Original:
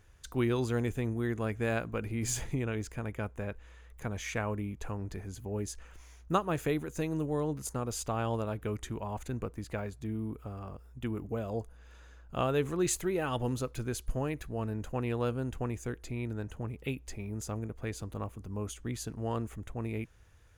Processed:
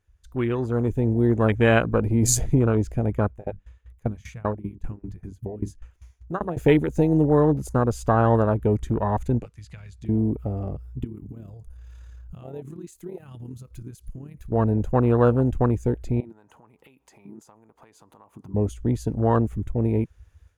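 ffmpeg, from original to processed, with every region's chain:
ffmpeg -i in.wav -filter_complex "[0:a]asettb=1/sr,asplit=3[link_01][link_02][link_03];[link_01]atrim=end=3.274[link_04];[link_02]atrim=start=3.27:end=6.57,asetpts=PTS-STARTPTS,afade=type=in:duration=0.004:curve=qsin,afade=type=out:start_time=3.296:duration=0.004:curve=qsin,bandreject=frequency=50:width_type=h:width=6,bandreject=frequency=100:width_type=h:width=6,bandreject=frequency=150:width_type=h:width=6,bandreject=frequency=200:width_type=h:width=6,bandreject=frequency=250:width_type=h:width=6,bandreject=frequency=300:width_type=h:width=6,aeval=exprs='val(0)*pow(10,-20*if(lt(mod(5.1*n/s,1),2*abs(5.1)/1000),1-mod(5.1*n/s,1)/(2*abs(5.1)/1000),(mod(5.1*n/s,1)-2*abs(5.1)/1000)/(1-2*abs(5.1)/1000))/20)':channel_layout=same[link_05];[link_03]atrim=start=6.566[link_06];[link_04][link_05]acrossfade=duration=0.004:curve1=hsin:curve2=qsin[link_07];[link_07][link_06]acrossfade=duration=0.004:curve1=qsin:curve2=hsin,asettb=1/sr,asplit=3[link_08][link_09][link_10];[link_08]atrim=end=9.394[link_11];[link_09]atrim=start=9.39:end=10.09,asetpts=PTS-STARTPTS,afade=type=in:duration=0.004:curve=qsin,afade=type=out:start_time=0.696:duration=0.004:curve=qsin,tiltshelf=frequency=1200:gain=-6,acrossover=split=93|1700[link_12][link_13][link_14];[link_12]acompressor=threshold=-56dB:ratio=4[link_15];[link_13]acompressor=threshold=-52dB:ratio=4[link_16];[link_14]acompressor=threshold=-46dB:ratio=4[link_17];[link_15][link_16][link_17]amix=inputs=3:normalize=0,lowpass=7100[link_18];[link_10]atrim=start=10.086[link_19];[link_11][link_18]acrossfade=duration=0.004:curve1=hsin:curve2=qsin[link_20];[link_20][link_19]acrossfade=duration=0.004:curve1=qsin:curve2=hsin,asettb=1/sr,asplit=3[link_21][link_22][link_23];[link_21]atrim=end=11.044[link_24];[link_22]atrim=start=11.04:end=14.52,asetpts=PTS-STARTPTS,afade=type=in:duration=0.004:curve=qsin,afade=type=out:start_time=3.476:duration=0.004:curve=qsin,highshelf=frequency=5500:gain=9,tremolo=f=36:d=0.462,acompressor=threshold=-47dB:ratio=5:attack=3.2:release=140:knee=1:detection=peak[link_25];[link_23]atrim=start=14.516[link_26];[link_24][link_25]acrossfade=duration=0.004:curve1=hsin:curve2=qsin[link_27];[link_27][link_26]acrossfade=duration=0.004:curve1=qsin:curve2=hsin,asettb=1/sr,asplit=3[link_28][link_29][link_30];[link_28]atrim=end=16.204[link_31];[link_29]atrim=start=16.2:end=18.54,asetpts=PTS-STARTPTS,afade=type=in:duration=0.004:curve=qsin,afade=type=out:start_time=2.336:duration=0.004:curve=qsin,highpass=190,acompressor=threshold=-48dB:ratio=20:attack=3.2:release=140:knee=1:detection=peak,equalizer=frequency=920:width_type=o:width=0.76:gain=12.5[link_32];[link_30]atrim=start=18.536[link_33];[link_31][link_32]acrossfade=duration=0.004:curve1=hsin:curve2=qsin[link_34];[link_34][link_33]acrossfade=duration=0.004:curve1=qsin:curve2=hsin,afwtdn=0.0112,dynaudnorm=framelen=640:gausssize=3:maxgain=11dB,volume=3dB" out.wav

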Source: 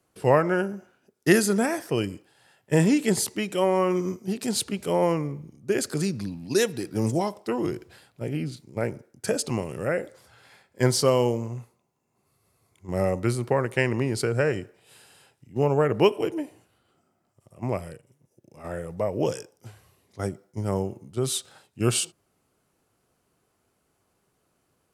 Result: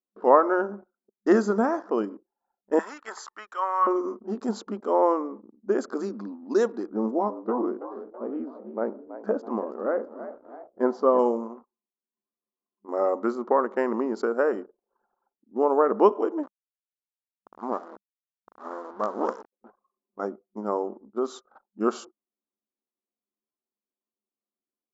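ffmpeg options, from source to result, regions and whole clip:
ffmpeg -i in.wav -filter_complex "[0:a]asettb=1/sr,asplit=3[link_01][link_02][link_03];[link_01]atrim=end=2.794[link_04];[link_02]atrim=start=2.79:end=3.87,asetpts=PTS-STARTPTS,afade=type=in:duration=0.004:curve=qsin,afade=type=out:start_time=1.076:duration=0.004:curve=qsin,highpass=frequency=1400:width_type=q:width=1.9,aeval=exprs='val(0)+0.00126*sin(2*PI*1800*n/s)':channel_layout=same[link_05];[link_03]atrim=start=3.866[link_06];[link_04][link_05]acrossfade=duration=0.004:curve1=hsin:curve2=qsin[link_07];[link_07][link_06]acrossfade=duration=0.004:curve1=qsin:curve2=hsin,asettb=1/sr,asplit=3[link_08][link_09][link_10];[link_08]atrim=end=6.894[link_11];[link_09]atrim=start=6.89:end=11.19,asetpts=PTS-STARTPTS,afade=type=in:duration=0.004:curve=qsin,afade=type=out:start_time=4.296:duration=0.004:curve=qsin,lowpass=frequency=1100:poles=1,asplit=6[link_12][link_13][link_14][link_15][link_16][link_17];[link_13]adelay=327,afreqshift=67,volume=-13dB[link_18];[link_14]adelay=654,afreqshift=134,volume=-19.4dB[link_19];[link_15]adelay=981,afreqshift=201,volume=-25.8dB[link_20];[link_16]adelay=1308,afreqshift=268,volume=-32.1dB[link_21];[link_17]adelay=1635,afreqshift=335,volume=-38.5dB[link_22];[link_12][link_18][link_19][link_20][link_21][link_22]amix=inputs=6:normalize=0,atrim=end_sample=189630[link_23];[link_10]atrim=start=11.186[link_24];[link_11][link_23]acrossfade=duration=0.004:curve1=hsin:curve2=qsin[link_25];[link_25][link_24]acrossfade=duration=0.004:curve1=qsin:curve2=hsin,asettb=1/sr,asplit=3[link_26][link_27][link_28];[link_26]atrim=end=16.434[link_29];[link_27]atrim=start=16.43:end=19.53,asetpts=PTS-STARTPTS,afade=type=in:duration=0.004:curve=qsin,afade=type=out:start_time=3.096:duration=0.004:curve=qsin,lowpass=12000,acrusher=bits=4:dc=4:mix=0:aa=0.000001[link_30];[link_28]atrim=start=19.526[link_31];[link_29][link_30]acrossfade=duration=0.004:curve1=hsin:curve2=qsin[link_32];[link_32][link_31]acrossfade=duration=0.004:curve1=qsin:curve2=hsin,afftfilt=real='re*between(b*sr/4096,200,7600)':imag='im*between(b*sr/4096,200,7600)':win_size=4096:overlap=0.75,highshelf=frequency=1700:width_type=q:width=3:gain=-12.5,anlmdn=0.01" out.wav

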